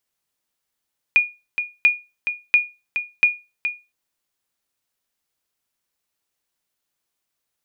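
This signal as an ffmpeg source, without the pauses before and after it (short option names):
-f lavfi -i "aevalsrc='0.473*(sin(2*PI*2440*mod(t,0.69))*exp(-6.91*mod(t,0.69)/0.26)+0.355*sin(2*PI*2440*max(mod(t,0.69)-0.42,0))*exp(-6.91*max(mod(t,0.69)-0.42,0)/0.26))':d=2.76:s=44100"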